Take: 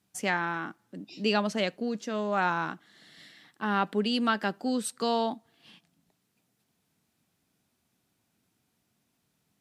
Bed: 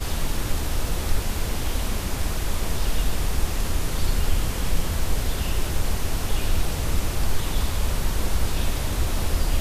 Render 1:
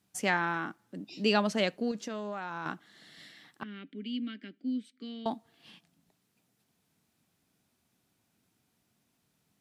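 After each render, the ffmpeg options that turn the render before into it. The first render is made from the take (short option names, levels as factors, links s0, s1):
-filter_complex "[0:a]asettb=1/sr,asplit=3[s0][s1][s2];[s0]atrim=end=1.914[s3];[s1]atrim=start=1.91:end=2.66,asetpts=PTS-STARTPTS,afade=t=in:d=0.004:c=qsin,afade=t=out:st=0.746:d=0.004:c=qsin,acompressor=threshold=0.0251:ratio=16:attack=3.2:release=140:knee=1:detection=peak[s4];[s2]atrim=start=2.656[s5];[s3][s4]acrossfade=d=0.004:c1=hsin:c2=qsin[s6];[s6][s5]acrossfade=d=0.004:c1=qsin:c2=hsin,asettb=1/sr,asplit=3[s7][s8][s9];[s7]atrim=end=3.634[s10];[s8]atrim=start=3.63:end=5.26,asetpts=PTS-STARTPTS,afade=t=in:d=0.004:c=qsin,afade=t=out:st=1.626:d=0.004:c=qsin,asplit=3[s11][s12][s13];[s11]bandpass=f=270:t=q:w=8,volume=1[s14];[s12]bandpass=f=2290:t=q:w=8,volume=0.501[s15];[s13]bandpass=f=3010:t=q:w=8,volume=0.355[s16];[s14][s15][s16]amix=inputs=3:normalize=0[s17];[s9]atrim=start=5.256[s18];[s10][s17]acrossfade=d=0.004:c1=hsin:c2=qsin[s19];[s19][s18]acrossfade=d=0.004:c1=qsin:c2=hsin"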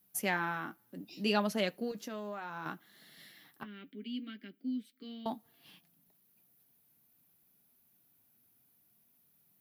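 -af "aexciter=amount=10:drive=5.1:freq=11000,flanger=delay=4.7:depth=3.4:regen=-58:speed=0.65:shape=sinusoidal"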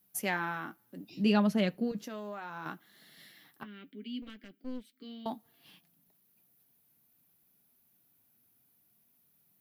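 -filter_complex "[0:a]asettb=1/sr,asplit=3[s0][s1][s2];[s0]atrim=end=1.104[s3];[s1]atrim=start=1.1:end=2.04,asetpts=PTS-STARTPTS,afade=t=in:d=0.004:c=qsin,afade=t=out:st=0.936:d=0.004:c=qsin,bass=f=250:g=12,treble=f=4000:g=-5[s4];[s2]atrim=start=2.036[s5];[s3][s4]acrossfade=d=0.004:c1=hsin:c2=qsin[s6];[s6][s5]acrossfade=d=0.004:c1=qsin:c2=hsin,asettb=1/sr,asplit=3[s7][s8][s9];[s7]atrim=end=4.224[s10];[s8]atrim=start=4.22:end=4.89,asetpts=PTS-STARTPTS,afade=t=in:d=0.004:c=qsin,afade=t=out:st=0.666:d=0.004:c=qsin,aeval=exprs='clip(val(0),-1,0.00211)':c=same[s11];[s9]atrim=start=4.886[s12];[s10][s11]acrossfade=d=0.004:c1=hsin:c2=qsin[s13];[s13][s12]acrossfade=d=0.004:c1=qsin:c2=hsin"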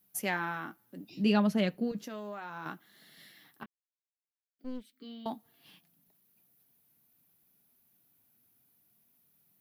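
-filter_complex "[0:a]asplit=3[s0][s1][s2];[s0]atrim=end=3.66,asetpts=PTS-STARTPTS,afade=t=out:st=3.656:d=0.004:c=hsin[s3];[s1]atrim=start=3.66:end=4.59,asetpts=PTS-STARTPTS,volume=0[s4];[s2]atrim=start=4.59,asetpts=PTS-STARTPTS,afade=t=in:d=0.004:c=hsin[s5];[s3][s4][s5]concat=n=3:v=0:a=1"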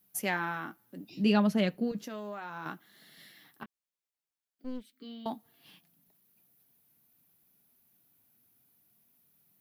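-af "volume=1.12"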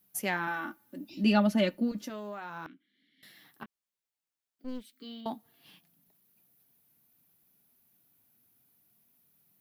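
-filter_complex "[0:a]asettb=1/sr,asplit=3[s0][s1][s2];[s0]atrim=end=0.474[s3];[s1]atrim=start=0.47:end=2.1,asetpts=PTS-STARTPTS,afade=t=in:d=0.004:c=qsin,afade=t=out:st=1.626:d=0.004:c=qsin,aecho=1:1:3.4:0.69,atrim=end_sample=71883[s4];[s2]atrim=start=2.096[s5];[s3][s4]acrossfade=d=0.004:c1=hsin:c2=qsin[s6];[s6][s5]acrossfade=d=0.004:c1=qsin:c2=hsin,asettb=1/sr,asplit=3[s7][s8][s9];[s7]atrim=end=2.664[s10];[s8]atrim=start=2.66:end=3.23,asetpts=PTS-STARTPTS,afade=t=in:d=0.004:c=qsin,afade=t=out:st=0.566:d=0.004:c=qsin,asplit=3[s11][s12][s13];[s11]bandpass=f=270:t=q:w=8,volume=1[s14];[s12]bandpass=f=2290:t=q:w=8,volume=0.501[s15];[s13]bandpass=f=3010:t=q:w=8,volume=0.355[s16];[s14][s15][s16]amix=inputs=3:normalize=0[s17];[s9]atrim=start=3.226[s18];[s10][s17]acrossfade=d=0.004:c1=hsin:c2=qsin[s19];[s19][s18]acrossfade=d=0.004:c1=qsin:c2=hsin,asettb=1/sr,asplit=3[s20][s21][s22];[s20]atrim=end=4.684[s23];[s21]atrim=start=4.68:end=5.21,asetpts=PTS-STARTPTS,afade=t=in:d=0.004:c=qsin,afade=t=out:st=0.526:d=0.004:c=qsin,highshelf=f=2100:g=6[s24];[s22]atrim=start=5.206[s25];[s23][s24]acrossfade=d=0.004:c1=hsin:c2=qsin[s26];[s26][s25]acrossfade=d=0.004:c1=qsin:c2=hsin"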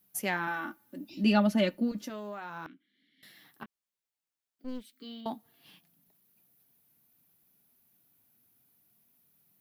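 -af anull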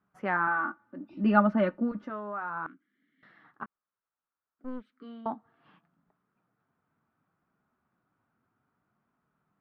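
-af "lowpass=f=1300:t=q:w=3.5"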